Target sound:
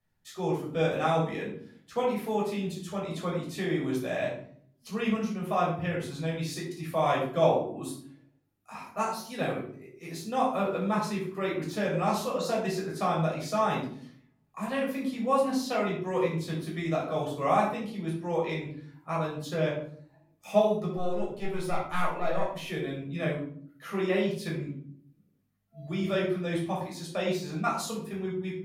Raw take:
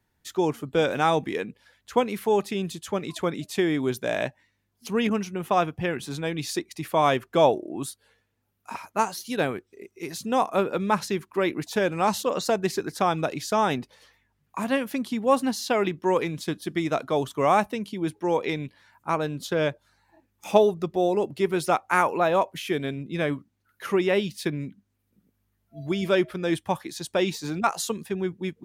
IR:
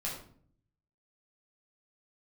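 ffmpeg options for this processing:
-filter_complex "[0:a]asettb=1/sr,asplit=3[link_01][link_02][link_03];[link_01]atrim=end=20.964[link_04];[link_02]atrim=start=20.96:end=22.49,asetpts=PTS-STARTPTS,afade=type=in:duration=0.004:curve=qsin,afade=type=out:start_time=1.526:duration=0.004:curve=qsin,aeval=exprs='(tanh(3.55*val(0)+0.65)-tanh(0.65))/3.55':channel_layout=same[link_05];[link_03]atrim=start=22.486[link_06];[link_04][link_05]acrossfade=duration=0.004:curve1=hsin:curve2=qsin[link_07];[link_07][link_06]acrossfade=duration=0.004:curve1=qsin:curve2=hsin[link_08];[1:a]atrim=start_sample=2205[link_09];[link_08][link_09]afir=irnorm=-1:irlink=0,volume=-7.5dB"

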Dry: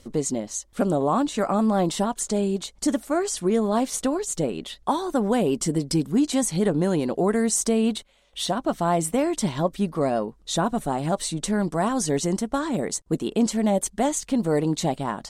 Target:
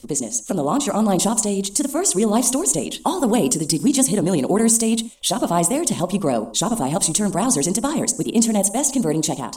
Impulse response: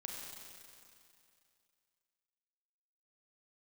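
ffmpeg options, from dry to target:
-filter_complex "[0:a]atempo=1.6,acrossover=split=460|1400[link_01][link_02][link_03];[link_03]aexciter=amount=1.9:drive=7.6:freq=2300[link_04];[link_01][link_02][link_04]amix=inputs=3:normalize=0,alimiter=limit=-9dB:level=0:latency=1:release=342,dynaudnorm=framelen=320:gausssize=5:maxgain=3.5dB,asplit=2[link_05][link_06];[link_06]equalizer=frequency=250:width_type=o:width=1:gain=10,equalizer=frequency=1000:width_type=o:width=1:gain=9,equalizer=frequency=2000:width_type=o:width=1:gain=-10,equalizer=frequency=4000:width_type=o:width=1:gain=-11,equalizer=frequency=8000:width_type=o:width=1:gain=5[link_07];[1:a]atrim=start_sample=2205,atrim=end_sample=6615[link_08];[link_07][link_08]afir=irnorm=-1:irlink=0,volume=-7dB[link_09];[link_05][link_09]amix=inputs=2:normalize=0,volume=-2.5dB"

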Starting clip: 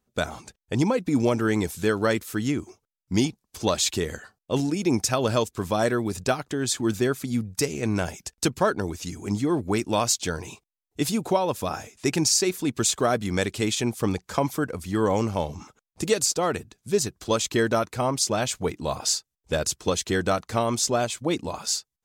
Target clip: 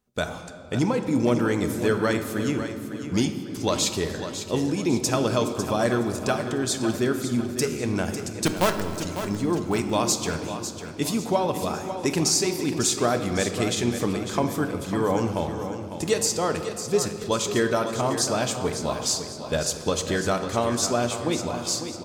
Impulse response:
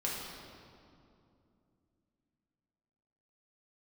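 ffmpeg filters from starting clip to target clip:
-filter_complex "[0:a]asplit=3[link_01][link_02][link_03];[link_01]afade=type=out:start_time=8.45:duration=0.02[link_04];[link_02]acrusher=bits=4:dc=4:mix=0:aa=0.000001,afade=type=in:start_time=8.45:duration=0.02,afade=type=out:start_time=8.99:duration=0.02[link_05];[link_03]afade=type=in:start_time=8.99:duration=0.02[link_06];[link_04][link_05][link_06]amix=inputs=3:normalize=0,aecho=1:1:550|1100|1650|2200:0.316|0.13|0.0532|0.0218,asplit=2[link_07][link_08];[1:a]atrim=start_sample=2205[link_09];[link_08][link_09]afir=irnorm=-1:irlink=0,volume=-8dB[link_10];[link_07][link_10]amix=inputs=2:normalize=0,volume=-3.5dB"

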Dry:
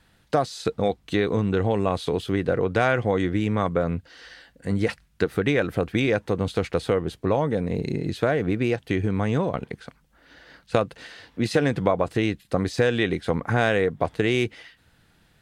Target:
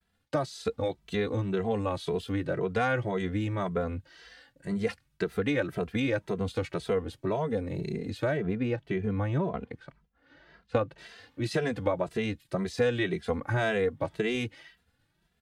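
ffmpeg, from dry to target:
ffmpeg -i in.wav -filter_complex "[0:a]agate=range=-33dB:threshold=-53dB:ratio=3:detection=peak,asettb=1/sr,asplit=3[link_01][link_02][link_03];[link_01]atrim=end=8.374[link_04];[link_02]atrim=start=8.37:end=10.98,asetpts=PTS-STARTPTS,afade=type=in:duration=0.004:curve=qsin,afade=type=out:start_time=2.606:duration=0.004:curve=qsin,aemphasis=mode=reproduction:type=75fm[link_05];[link_03]atrim=start=10.976[link_06];[link_04][link_05]acrossfade=duration=0.004:curve1=hsin:curve2=qsin[link_07];[link_07][link_06]acrossfade=duration=0.004:curve1=qsin:curve2=hsin,asplit=2[link_08][link_09];[link_09]adelay=2.6,afreqshift=1.9[link_10];[link_08][link_10]amix=inputs=2:normalize=1,volume=-3.5dB" out.wav

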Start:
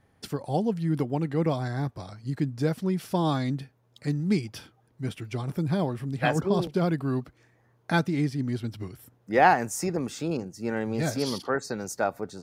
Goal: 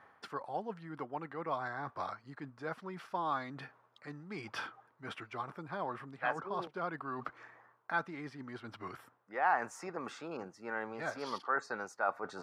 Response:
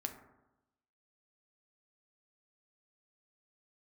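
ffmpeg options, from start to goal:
-af "areverse,acompressor=threshold=-42dB:ratio=4,areverse,bandpass=frequency=1200:width_type=q:width=2.2:csg=0,volume=16.5dB"

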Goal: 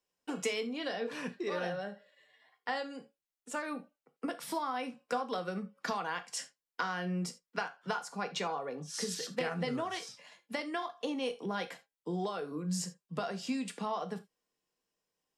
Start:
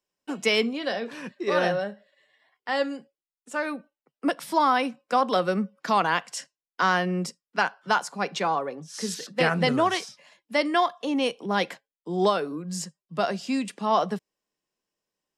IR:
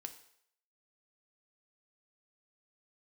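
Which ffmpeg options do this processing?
-filter_complex "[0:a]acompressor=threshold=-31dB:ratio=10[link_01];[1:a]atrim=start_sample=2205,atrim=end_sample=6615,asetrate=70560,aresample=44100[link_02];[link_01][link_02]afir=irnorm=-1:irlink=0,volume=7.5dB"

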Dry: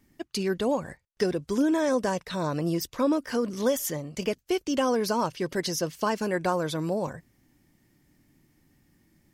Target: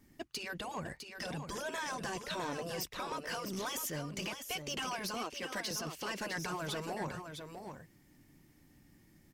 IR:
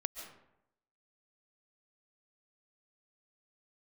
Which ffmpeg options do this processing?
-filter_complex "[0:a]asettb=1/sr,asplit=3[link_01][link_02][link_03];[link_01]atrim=end=5.144[link_04];[link_02]atrim=start=5.14:end=5.71,asetpts=PTS-STARTPTS,afade=type=in:duration=0.004:curve=qsin,afade=type=out:start_time=0.566:duration=0.004:curve=qsin,highpass=frequency=260:width=0.5412,highpass=frequency=260:width=1.3066[link_05];[link_03]atrim=start=5.706[link_06];[link_04][link_05]acrossfade=duration=0.004:curve1=hsin:curve2=qsin[link_07];[link_07][link_06]acrossfade=duration=0.004:curve1=qsin:curve2=hsin,afftfilt=real='re*lt(hypot(re,im),0.224)':imag='im*lt(hypot(re,im),0.224)':win_size=1024:overlap=0.75,adynamicequalizer=threshold=0.00282:dfrequency=2700:dqfactor=2.6:tfrequency=2700:tqfactor=2.6:attack=5:release=100:ratio=0.375:range=2.5:mode=boostabove:tftype=bell,alimiter=level_in=1.5dB:limit=-24dB:level=0:latency=1:release=412,volume=-1.5dB,asoftclip=type=tanh:threshold=-31.5dB,asplit=2[link_08][link_09];[link_09]aecho=0:1:656:0.422[link_10];[link_08][link_10]amix=inputs=2:normalize=0"

